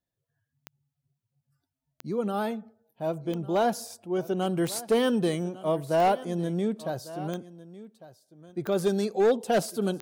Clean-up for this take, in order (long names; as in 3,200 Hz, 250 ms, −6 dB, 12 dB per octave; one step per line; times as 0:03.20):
clipped peaks rebuilt −17 dBFS
click removal
echo removal 1,151 ms −17.5 dB